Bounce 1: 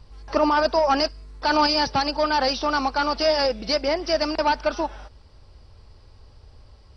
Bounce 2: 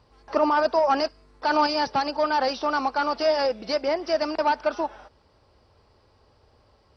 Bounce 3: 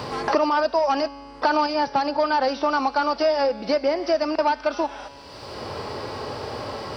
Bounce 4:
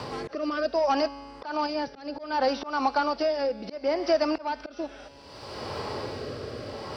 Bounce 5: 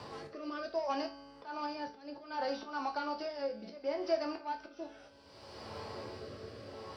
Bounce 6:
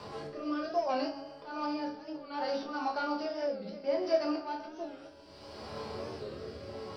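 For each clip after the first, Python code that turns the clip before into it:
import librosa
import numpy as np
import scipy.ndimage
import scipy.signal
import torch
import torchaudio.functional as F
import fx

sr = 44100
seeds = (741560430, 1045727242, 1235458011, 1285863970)

y1 = fx.highpass(x, sr, hz=390.0, slope=6)
y1 = fx.high_shelf(y1, sr, hz=2000.0, db=-10.0)
y1 = y1 * librosa.db_to_amplitude(1.5)
y2 = fx.comb_fb(y1, sr, f0_hz=140.0, decay_s=1.1, harmonics='all', damping=0.0, mix_pct=50)
y2 = fx.hpss(y2, sr, part='harmonic', gain_db=5)
y2 = fx.band_squash(y2, sr, depth_pct=100)
y2 = y2 * librosa.db_to_amplitude(3.0)
y3 = fx.auto_swell(y2, sr, attack_ms=217.0)
y3 = fx.rotary(y3, sr, hz=0.65)
y3 = y3 * librosa.db_to_amplitude(-1.0)
y4 = fx.resonator_bank(y3, sr, root=38, chord='major', decay_s=0.28)
y5 = fx.echo_split(y4, sr, split_hz=590.0, low_ms=230, high_ms=130, feedback_pct=52, wet_db=-15.5)
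y5 = fx.room_shoebox(y5, sr, seeds[0], volume_m3=160.0, walls='furnished', distance_m=1.3)
y5 = fx.record_warp(y5, sr, rpm=45.0, depth_cents=100.0)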